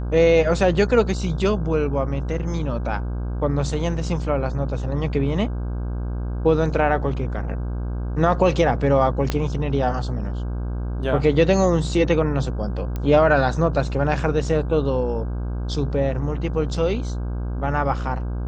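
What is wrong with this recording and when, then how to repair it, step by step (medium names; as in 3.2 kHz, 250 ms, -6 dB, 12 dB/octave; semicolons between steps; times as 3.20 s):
buzz 60 Hz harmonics 27 -26 dBFS
9.30 s: pop -8 dBFS
12.96 s: pop -15 dBFS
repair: de-click; de-hum 60 Hz, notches 27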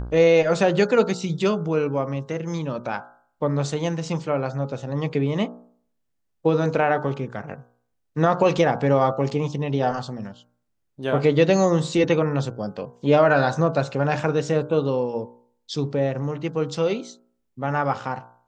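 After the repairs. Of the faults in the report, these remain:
9.30 s: pop
12.96 s: pop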